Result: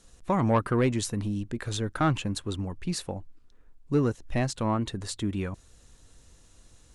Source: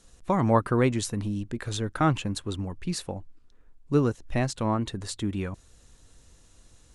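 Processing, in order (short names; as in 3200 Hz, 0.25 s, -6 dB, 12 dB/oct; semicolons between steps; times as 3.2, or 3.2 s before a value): soft clip -14.5 dBFS, distortion -18 dB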